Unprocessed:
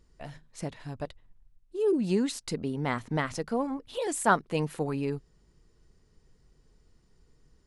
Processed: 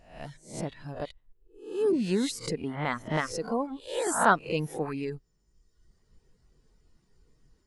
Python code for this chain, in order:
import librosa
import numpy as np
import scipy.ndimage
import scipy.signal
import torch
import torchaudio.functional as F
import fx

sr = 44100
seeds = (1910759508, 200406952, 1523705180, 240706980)

y = fx.spec_swells(x, sr, rise_s=0.54)
y = fx.dereverb_blind(y, sr, rt60_s=1.2)